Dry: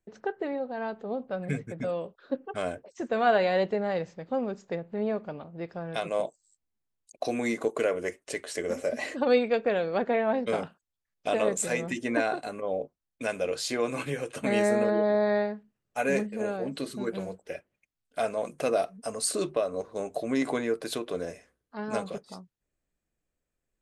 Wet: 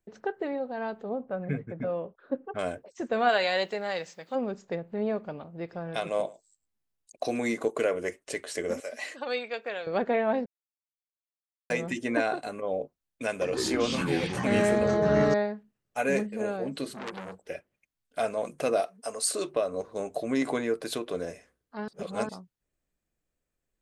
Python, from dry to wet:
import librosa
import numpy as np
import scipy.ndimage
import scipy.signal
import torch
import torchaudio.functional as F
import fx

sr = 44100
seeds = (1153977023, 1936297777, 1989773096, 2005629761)

y = fx.lowpass(x, sr, hz=1900.0, slope=12, at=(1.09, 2.59))
y = fx.tilt_eq(y, sr, slope=4.0, at=(3.28, 4.34), fade=0.02)
y = fx.echo_single(y, sr, ms=106, db=-21.0, at=(5.62, 7.49))
y = fx.highpass(y, sr, hz=1500.0, slope=6, at=(8.8, 9.87))
y = fx.echo_pitch(y, sr, ms=113, semitones=-6, count=3, db_per_echo=-3.0, at=(13.3, 15.34))
y = fx.transformer_sat(y, sr, knee_hz=3000.0, at=(16.92, 17.47))
y = fx.bass_treble(y, sr, bass_db=-13, treble_db=1, at=(18.8, 19.54))
y = fx.edit(y, sr, fx.silence(start_s=10.46, length_s=1.24),
    fx.reverse_span(start_s=21.88, length_s=0.41), tone=tone)